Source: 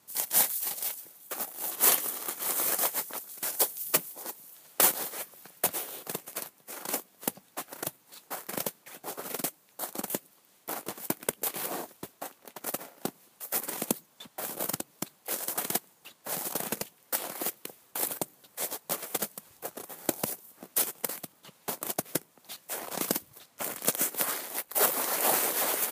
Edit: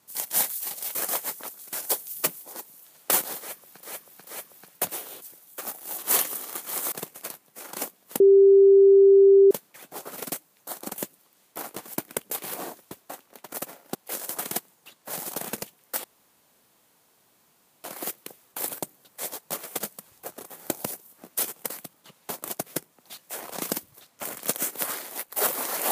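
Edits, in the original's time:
0.95–2.65 s: move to 6.04 s
5.09–5.53 s: loop, 3 plays
7.32–8.63 s: bleep 393 Hz -11 dBFS
13.07–15.14 s: delete
17.23 s: insert room tone 1.80 s

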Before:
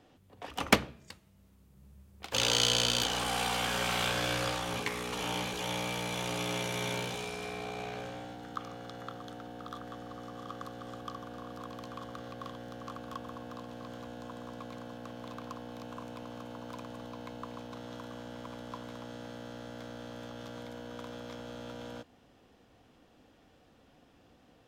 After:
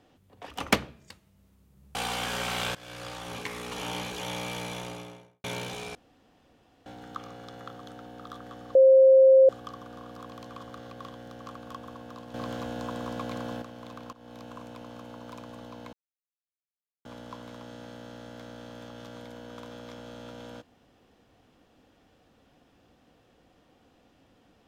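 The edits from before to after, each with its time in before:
1.95–3.36 s: delete
4.16–5.39 s: fade in equal-power, from -22 dB
5.99–6.85 s: studio fade out
7.36–8.27 s: room tone
10.16–10.90 s: bleep 530 Hz -12.5 dBFS
13.75–15.03 s: gain +9 dB
15.54–15.88 s: fade in equal-power, from -16.5 dB
17.34–18.46 s: mute

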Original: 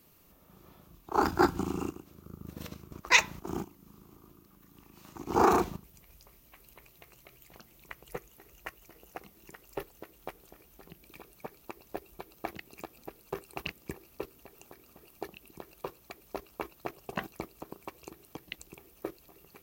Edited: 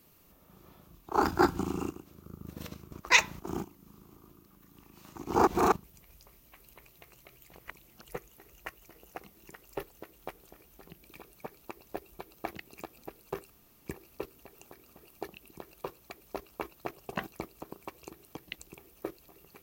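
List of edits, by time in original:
5.47–5.72 s: reverse
7.57–8.04 s: reverse
13.50–13.84 s: room tone

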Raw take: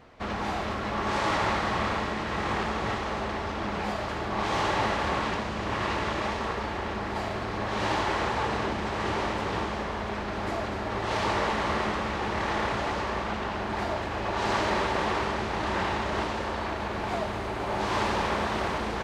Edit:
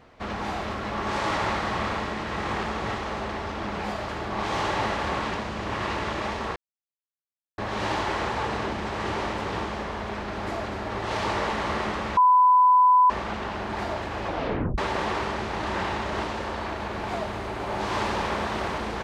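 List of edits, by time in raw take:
6.56–7.58 s: mute
12.17–13.10 s: bleep 1 kHz -13.5 dBFS
14.26 s: tape stop 0.52 s

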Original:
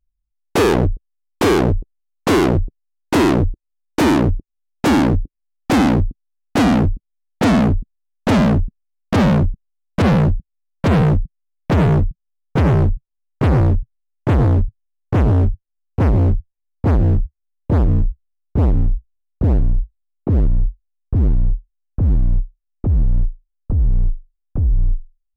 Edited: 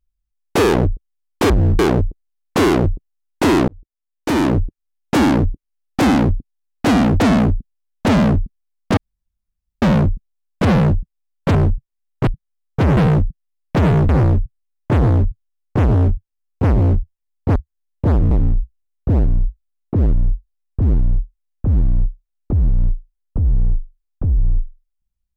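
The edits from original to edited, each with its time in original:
3.39–4.32 s: fade in
6.91–7.42 s: delete
9.19 s: insert room tone 0.85 s
10.92–12.04 s: swap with 12.74–13.46 s
16.93–17.22 s: move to 1.50 s
17.97–18.65 s: delete

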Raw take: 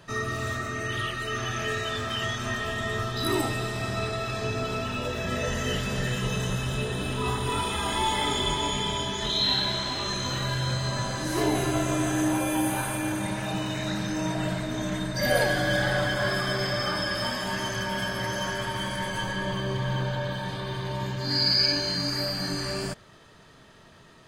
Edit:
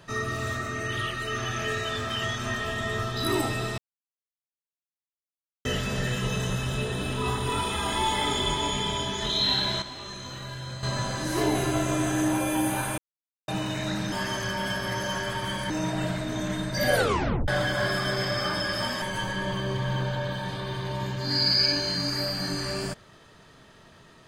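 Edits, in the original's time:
3.78–5.65 s: mute
9.82–10.83 s: gain -9 dB
12.98–13.48 s: mute
15.37 s: tape stop 0.53 s
17.44–19.02 s: move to 14.12 s

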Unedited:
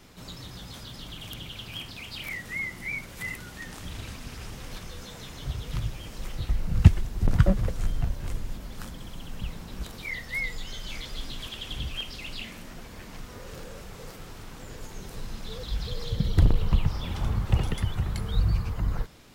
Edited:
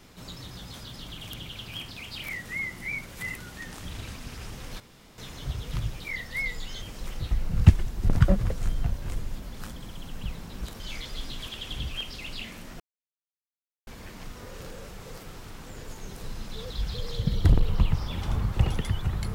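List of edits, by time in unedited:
4.80–5.18 s: room tone
9.98–10.80 s: move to 6.00 s
12.80 s: insert silence 1.07 s

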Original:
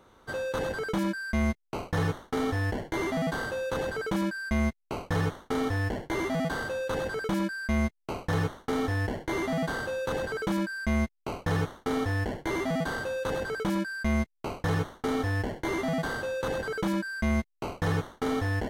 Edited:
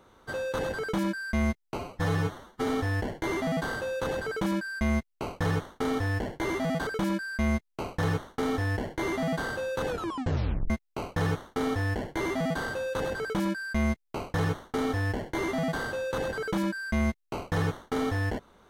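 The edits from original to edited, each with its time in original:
1.78–2.38 s: stretch 1.5×
6.57–7.17 s: delete
10.17 s: tape stop 0.83 s

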